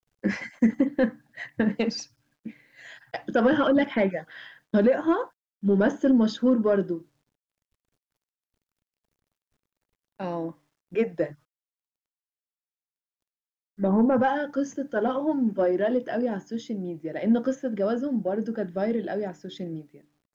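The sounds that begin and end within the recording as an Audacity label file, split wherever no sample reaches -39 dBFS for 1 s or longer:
10.200000	11.330000	sound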